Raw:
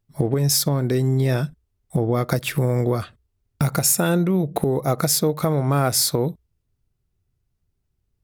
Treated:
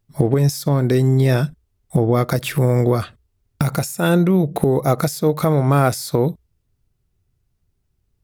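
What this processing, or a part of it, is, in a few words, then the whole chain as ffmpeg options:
de-esser from a sidechain: -filter_complex "[0:a]asplit=2[a][b];[b]highpass=7k,apad=whole_len=363180[c];[a][c]sidechaincompress=threshold=-29dB:ratio=16:attack=0.53:release=94,volume=4.5dB"

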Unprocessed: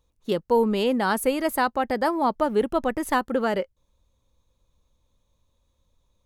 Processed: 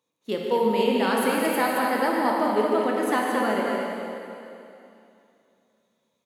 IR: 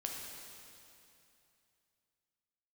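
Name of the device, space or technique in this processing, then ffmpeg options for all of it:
stadium PA: -filter_complex "[0:a]highpass=f=170:w=0.5412,highpass=f=170:w=1.3066,equalizer=f=2.2k:t=o:w=0.57:g=5.5,aecho=1:1:148.7|221.6:0.355|0.562[a];[1:a]atrim=start_sample=2205[b];[a][b]afir=irnorm=-1:irlink=0,volume=-1.5dB"

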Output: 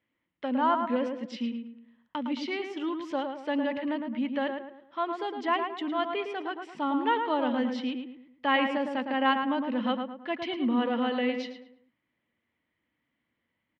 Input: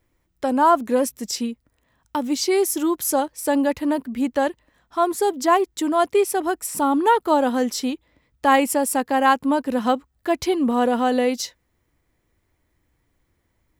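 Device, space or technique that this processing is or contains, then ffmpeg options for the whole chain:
kitchen radio: -filter_complex "[0:a]highpass=180,equalizer=f=230:t=q:w=4:g=6,equalizer=f=390:t=q:w=4:g=-8,equalizer=f=740:t=q:w=4:g=-4,equalizer=f=2k:t=q:w=4:g=6,equalizer=f=3k:t=q:w=4:g=8,lowpass=f=3.7k:w=0.5412,lowpass=f=3.7k:w=1.3066,asplit=2[a][b];[b]adelay=109,lowpass=f=2k:p=1,volume=-5dB,asplit=2[c][d];[d]adelay=109,lowpass=f=2k:p=1,volume=0.41,asplit=2[e][f];[f]adelay=109,lowpass=f=2k:p=1,volume=0.41,asplit=2[g][h];[h]adelay=109,lowpass=f=2k:p=1,volume=0.41,asplit=2[i][j];[j]adelay=109,lowpass=f=2k:p=1,volume=0.41[k];[a][c][e][g][i][k]amix=inputs=6:normalize=0,volume=-9dB"

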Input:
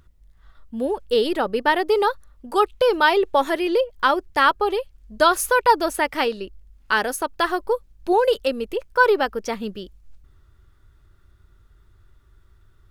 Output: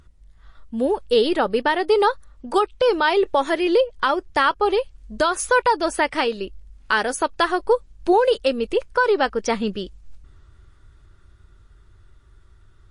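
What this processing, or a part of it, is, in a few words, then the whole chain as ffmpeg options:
low-bitrate web radio: -af "dynaudnorm=f=310:g=17:m=9.5dB,alimiter=limit=-11.5dB:level=0:latency=1:release=353,volume=3.5dB" -ar 24000 -c:a libmp3lame -b:a 40k

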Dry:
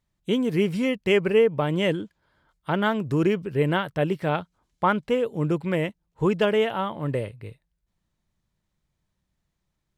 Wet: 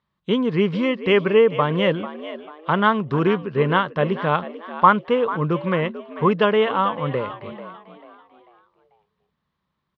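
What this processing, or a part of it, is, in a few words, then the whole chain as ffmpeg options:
frequency-shifting delay pedal into a guitar cabinet: -filter_complex "[0:a]asplit=5[a][b][c][d][e];[b]adelay=442,afreqshift=77,volume=-14dB[f];[c]adelay=884,afreqshift=154,volume=-22.4dB[g];[d]adelay=1326,afreqshift=231,volume=-30.8dB[h];[e]adelay=1768,afreqshift=308,volume=-39.2dB[i];[a][f][g][h][i]amix=inputs=5:normalize=0,highpass=99,equalizer=f=110:t=q:w=4:g=-9,equalizer=f=310:t=q:w=4:g=-6,equalizer=f=690:t=q:w=4:g=-4,equalizer=f=1.1k:t=q:w=4:g=10,equalizer=f=2.4k:t=q:w=4:g=-3,lowpass=f=4.1k:w=0.5412,lowpass=f=4.1k:w=1.3066,volume=4.5dB"

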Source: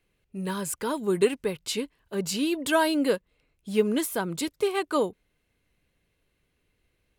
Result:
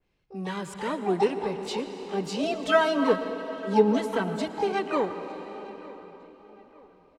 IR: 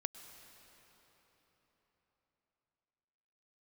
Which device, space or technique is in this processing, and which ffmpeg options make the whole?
shimmer-style reverb: -filter_complex "[0:a]asplit=2[a][b];[b]asetrate=88200,aresample=44100,atempo=0.5,volume=-6dB[c];[a][c]amix=inputs=2:normalize=0[d];[1:a]atrim=start_sample=2205[e];[d][e]afir=irnorm=-1:irlink=0,lowpass=5.1k,asettb=1/sr,asplit=3[f][g][h];[f]atrim=end=2.434[i];[g]atrim=start=2.43:end=4.48,asetpts=PTS-STARTPTS,afade=t=in:d=0.004:c=qsin,afade=t=out:st=2.046:d=0.004:c=qsin,aecho=1:1:4.5:0.77,atrim=end_sample=90405[j];[h]atrim=start=4.476[k];[i][j]acrossfade=d=0.004:c1=hsin:c2=qsin[l];[l][k]acrossfade=d=0.004:c1=qsin:c2=hsin,asplit=2[m][n];[n]adelay=908,lowpass=f=2.6k:p=1,volume=-21dB,asplit=2[o][p];[p]adelay=908,lowpass=f=2.6k:p=1,volume=0.4,asplit=2[q][r];[r]adelay=908,lowpass=f=2.6k:p=1,volume=0.4[s];[m][o][q][s]amix=inputs=4:normalize=0,adynamicequalizer=threshold=0.00891:dfrequency=2100:dqfactor=0.7:tfrequency=2100:tqfactor=0.7:attack=5:release=100:ratio=0.375:range=3:mode=cutabove:tftype=highshelf"

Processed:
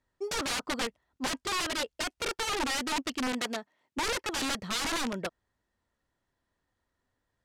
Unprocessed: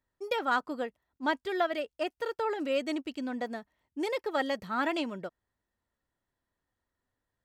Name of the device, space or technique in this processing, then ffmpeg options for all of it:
overflowing digital effects unit: -filter_complex "[0:a]aeval=exprs='(mod(31.6*val(0)+1,2)-1)/31.6':c=same,lowpass=8.2k,asettb=1/sr,asplit=3[a][b][c];[a]atrim=end=3.324[d];[b]atrim=start=3.32:end=3.98,asetpts=PTS-STARTPTS,afade=t=in:d=0.004:c=qsin,afade=t=out:st=0.656:d=0.004:c=qsin,highpass=230[e];[c]atrim=start=3.976[f];[d][e]acrossfade=d=0.004:c1=hsin:c2=qsin[g];[g][f]acrossfade=d=0.004:c1=qsin:c2=hsin,volume=4.5dB"

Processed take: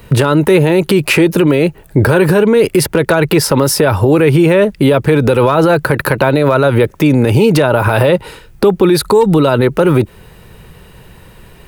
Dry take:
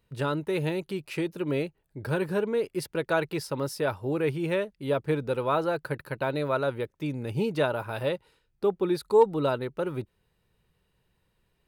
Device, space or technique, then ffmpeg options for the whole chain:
mastering chain: -filter_complex "[0:a]equalizer=f=4.3k:t=o:w=1.2:g=-4,acrossover=split=240|1900[a][b][c];[a]acompressor=threshold=-39dB:ratio=4[d];[b]acompressor=threshold=-32dB:ratio=4[e];[c]acompressor=threshold=-45dB:ratio=4[f];[d][e][f]amix=inputs=3:normalize=0,acompressor=threshold=-35dB:ratio=2,asoftclip=type=hard:threshold=-26dB,alimiter=level_in=34.5dB:limit=-1dB:release=50:level=0:latency=1,volume=-1dB"

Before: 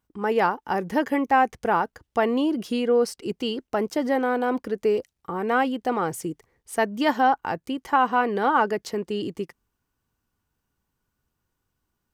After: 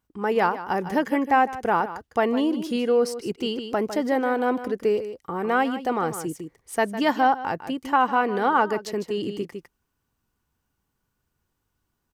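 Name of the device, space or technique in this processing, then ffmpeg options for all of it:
ducked delay: -filter_complex "[0:a]asplit=3[a][b][c];[b]adelay=154,volume=-4dB[d];[c]apad=whole_len=541960[e];[d][e]sidechaincompress=threshold=-27dB:ratio=10:attack=26:release=838[f];[a][f]amix=inputs=2:normalize=0"

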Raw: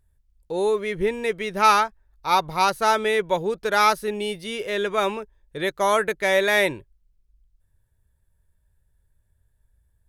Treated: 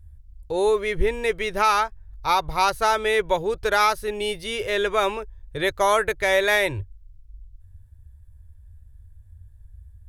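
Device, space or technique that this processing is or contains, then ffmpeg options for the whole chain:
car stereo with a boomy subwoofer: -af "lowshelf=f=130:t=q:w=3:g=13,alimiter=limit=-12dB:level=0:latency=1:release=392,volume=3dB"

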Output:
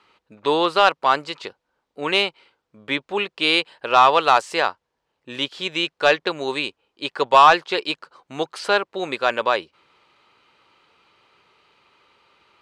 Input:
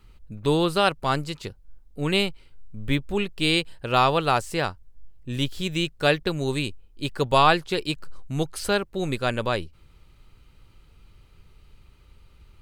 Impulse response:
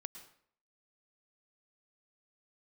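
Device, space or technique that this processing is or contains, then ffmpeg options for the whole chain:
intercom: -filter_complex "[0:a]highpass=480,lowpass=4.4k,equalizer=f=1k:t=o:w=0.58:g=4,asoftclip=type=tanh:threshold=-8.5dB,asettb=1/sr,asplit=3[a][b][c];[a]atrim=end=4.134[d];[b]atrim=start=4.13:end=4.63,asetpts=PTS-STARTPTS,afade=t=in:d=0.004:c=qsin,afade=t=out:st=0.496:d=0.004:c=qsin,highshelf=f=5.6k:g=7.5[e];[c]atrim=start=4.626[f];[d][e]acrossfade=d=0.004:c1=hsin:c2=qsin[g];[g][f]acrossfade=d=0.004:c1=qsin:c2=hsin,volume=6.5dB"

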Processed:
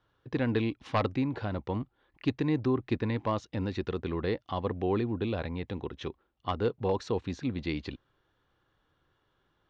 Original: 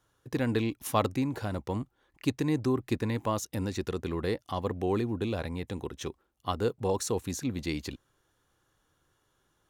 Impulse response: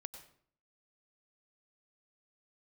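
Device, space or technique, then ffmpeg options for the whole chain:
synthesiser wavefolder: -af "aeval=exprs='0.126*(abs(mod(val(0)/0.126+3,4)-2)-1)':c=same,lowpass=f=4.1k:w=0.5412,lowpass=f=4.1k:w=1.3066"

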